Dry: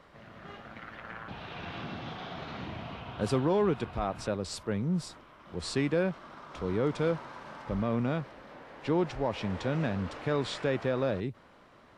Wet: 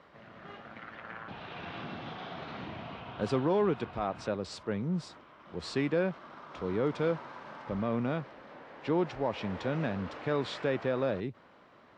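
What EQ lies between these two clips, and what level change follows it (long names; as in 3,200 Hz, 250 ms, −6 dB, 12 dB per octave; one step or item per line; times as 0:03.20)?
high-pass filter 150 Hz 6 dB per octave
high-frequency loss of the air 95 metres
0.0 dB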